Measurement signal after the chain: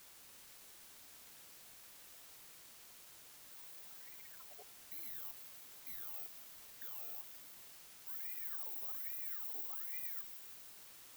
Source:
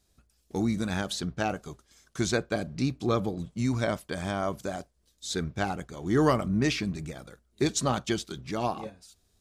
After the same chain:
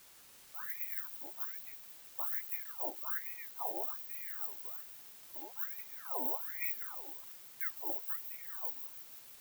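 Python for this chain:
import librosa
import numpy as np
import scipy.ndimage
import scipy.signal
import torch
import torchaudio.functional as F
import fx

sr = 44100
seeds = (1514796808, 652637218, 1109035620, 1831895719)

p1 = fx.block_float(x, sr, bits=3)
p2 = scipy.signal.sosfilt(scipy.signal.cheby2(4, 50, [400.0, 9800.0], 'bandstop', fs=sr, output='sos'), p1)
p3 = fx.spec_gate(p2, sr, threshold_db=-20, keep='weak')
p4 = fx.level_steps(p3, sr, step_db=10)
p5 = p3 + (p4 * 10.0 ** (1.5 / 20.0))
p6 = fx.dmg_noise_colour(p5, sr, seeds[0], colour='white', level_db=-64.0)
p7 = p6 + fx.echo_wet_highpass(p6, sr, ms=162, feedback_pct=71, hz=1400.0, wet_db=-10, dry=0)
p8 = fx.ring_lfo(p7, sr, carrier_hz=1400.0, swing_pct=60, hz=1.2)
y = p8 * 10.0 ** (8.0 / 20.0)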